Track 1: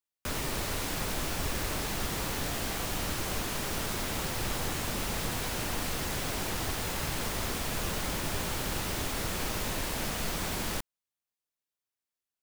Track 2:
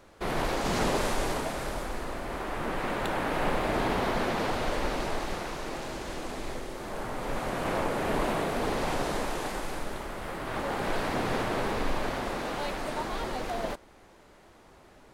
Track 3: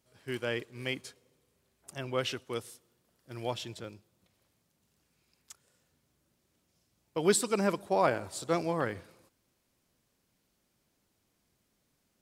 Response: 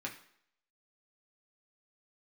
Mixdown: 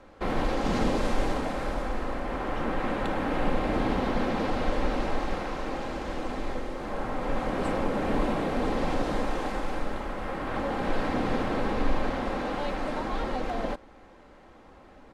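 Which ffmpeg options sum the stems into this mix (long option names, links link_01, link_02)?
-filter_complex "[0:a]volume=-19dB[link_01];[1:a]aecho=1:1:3.8:0.36,volume=2.5dB[link_02];[2:a]adelay=300,volume=-12dB[link_03];[link_01][link_02][link_03]amix=inputs=3:normalize=0,aemphasis=mode=reproduction:type=75fm,acrossover=split=410|3000[link_04][link_05][link_06];[link_05]acompressor=threshold=-30dB:ratio=6[link_07];[link_04][link_07][link_06]amix=inputs=3:normalize=0"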